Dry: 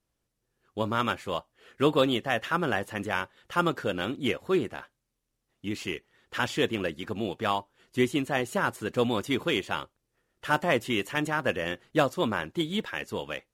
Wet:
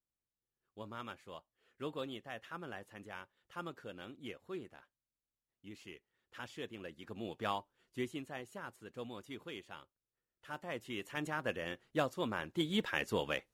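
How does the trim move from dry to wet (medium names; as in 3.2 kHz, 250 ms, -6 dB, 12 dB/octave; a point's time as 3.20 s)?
6.74 s -18.5 dB
7.46 s -9 dB
8.58 s -19.5 dB
10.56 s -19.5 dB
11.27 s -10 dB
12.28 s -10 dB
12.96 s -1.5 dB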